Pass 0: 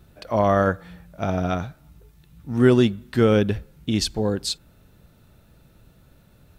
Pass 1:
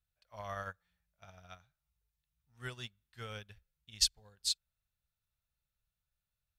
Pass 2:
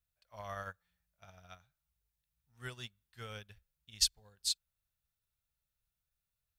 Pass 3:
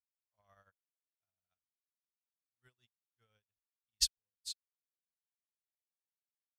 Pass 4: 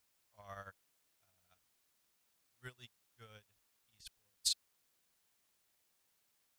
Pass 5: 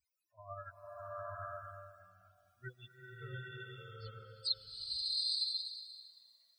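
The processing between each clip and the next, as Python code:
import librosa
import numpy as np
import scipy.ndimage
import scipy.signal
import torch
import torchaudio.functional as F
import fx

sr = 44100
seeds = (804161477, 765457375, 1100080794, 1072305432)

y1 = fx.tone_stack(x, sr, knobs='10-0-10')
y1 = fx.upward_expand(y1, sr, threshold_db=-41.0, expansion=2.5)
y2 = fx.high_shelf(y1, sr, hz=10000.0, db=6.0)
y2 = y2 * librosa.db_to_amplitude(-1.5)
y3 = fx.upward_expand(y2, sr, threshold_db=-53.0, expansion=2.5)
y4 = fx.over_compress(y3, sr, threshold_db=-44.0, ratio=-0.5)
y4 = y4 * librosa.db_to_amplitude(8.0)
y5 = fx.spec_topn(y4, sr, count=8)
y5 = fx.rev_bloom(y5, sr, seeds[0], attack_ms=890, drr_db=-7.0)
y5 = y5 * librosa.db_to_amplitude(5.5)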